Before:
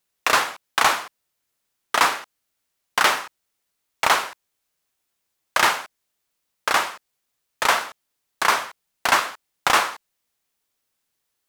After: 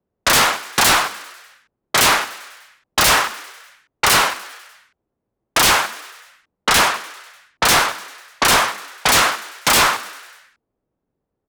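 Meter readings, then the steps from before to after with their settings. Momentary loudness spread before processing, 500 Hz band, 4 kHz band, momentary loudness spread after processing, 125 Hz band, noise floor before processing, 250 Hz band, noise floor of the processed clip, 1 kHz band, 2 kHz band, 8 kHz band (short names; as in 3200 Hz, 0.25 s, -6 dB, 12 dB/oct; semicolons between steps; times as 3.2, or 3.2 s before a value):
12 LU, +6.0 dB, +9.0 dB, 14 LU, +15.5 dB, -77 dBFS, +10.5 dB, -79 dBFS, +4.0 dB, +5.0 dB, +11.0 dB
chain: low-pass opened by the level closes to 440 Hz, open at -18 dBFS; sine folder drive 18 dB, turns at -2.5 dBFS; frequency shift +15 Hz; on a send: frequency-shifting echo 99 ms, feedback 63%, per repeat +84 Hz, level -17.5 dB; on the sum: gain -7 dB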